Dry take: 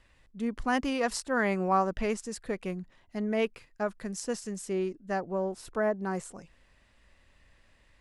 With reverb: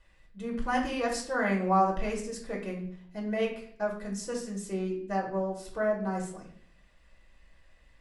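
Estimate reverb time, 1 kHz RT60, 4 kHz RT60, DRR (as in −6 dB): 0.60 s, 0.50 s, 0.50 s, −2.5 dB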